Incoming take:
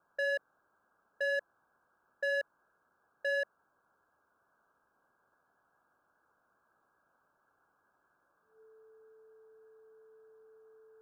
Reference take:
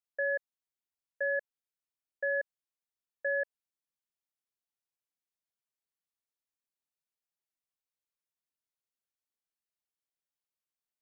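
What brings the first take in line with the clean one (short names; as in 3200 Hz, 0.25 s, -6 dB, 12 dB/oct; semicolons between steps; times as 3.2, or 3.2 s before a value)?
clip repair -27.5 dBFS; notch 440 Hz, Q 30; noise print and reduce 18 dB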